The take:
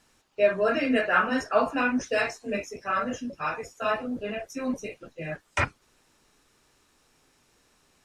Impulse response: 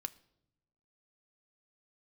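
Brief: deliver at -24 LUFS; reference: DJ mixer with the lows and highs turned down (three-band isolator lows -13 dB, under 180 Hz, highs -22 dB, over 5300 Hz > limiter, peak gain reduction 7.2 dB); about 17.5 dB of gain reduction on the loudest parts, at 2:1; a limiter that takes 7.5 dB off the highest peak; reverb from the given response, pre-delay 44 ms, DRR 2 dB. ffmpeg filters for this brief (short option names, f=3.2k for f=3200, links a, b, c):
-filter_complex "[0:a]acompressor=threshold=-50dB:ratio=2,alimiter=level_in=9dB:limit=-24dB:level=0:latency=1,volume=-9dB,asplit=2[a][b];[1:a]atrim=start_sample=2205,adelay=44[c];[b][c]afir=irnorm=-1:irlink=0,volume=0dB[d];[a][d]amix=inputs=2:normalize=0,acrossover=split=180 5300:gain=0.224 1 0.0794[e][f][g];[e][f][g]amix=inputs=3:normalize=0,volume=21.5dB,alimiter=limit=-14.5dB:level=0:latency=1"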